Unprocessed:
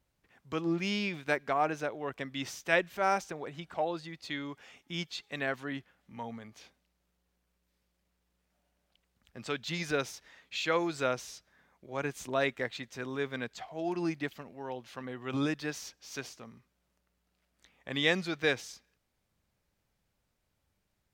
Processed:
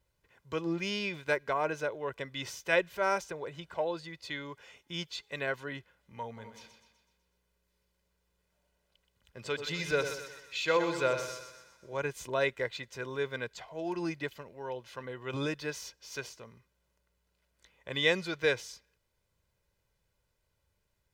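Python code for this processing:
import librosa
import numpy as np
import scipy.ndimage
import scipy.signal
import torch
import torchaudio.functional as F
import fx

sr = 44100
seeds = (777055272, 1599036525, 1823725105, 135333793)

y = fx.echo_split(x, sr, split_hz=960.0, low_ms=88, high_ms=125, feedback_pct=52, wet_db=-8, at=(6.36, 11.96), fade=0.02)
y = y + 0.54 * np.pad(y, (int(2.0 * sr / 1000.0), 0))[:len(y)]
y = y * 10.0 ** (-1.0 / 20.0)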